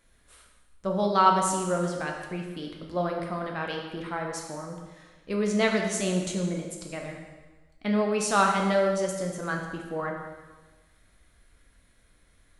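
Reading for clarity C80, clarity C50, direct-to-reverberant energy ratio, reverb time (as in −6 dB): 5.5 dB, 4.0 dB, 1.0 dB, 1.3 s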